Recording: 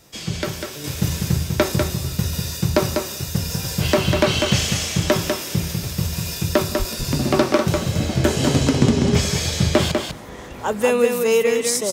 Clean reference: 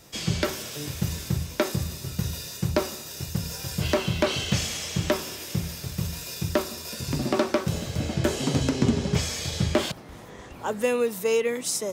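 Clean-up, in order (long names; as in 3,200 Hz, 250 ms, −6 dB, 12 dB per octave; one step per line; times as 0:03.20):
0:06.78–0:06.90: high-pass filter 140 Hz 24 dB per octave
echo removal 197 ms −5 dB
0:00.84: level correction −6 dB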